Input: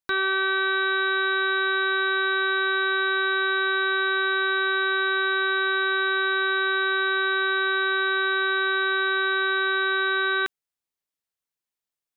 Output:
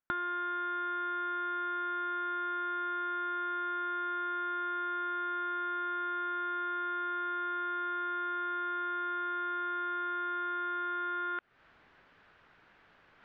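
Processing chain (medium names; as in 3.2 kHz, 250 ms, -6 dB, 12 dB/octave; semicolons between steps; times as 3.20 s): speed mistake 48 kHz file played as 44.1 kHz; reverse; upward compressor, threshold -27 dBFS; reverse; Bessel low-pass 1.9 kHz, order 4; peaking EQ 1.5 kHz +7 dB 0.59 oct; compression 8:1, threshold -32 dBFS, peak gain reduction 14 dB; trim -1 dB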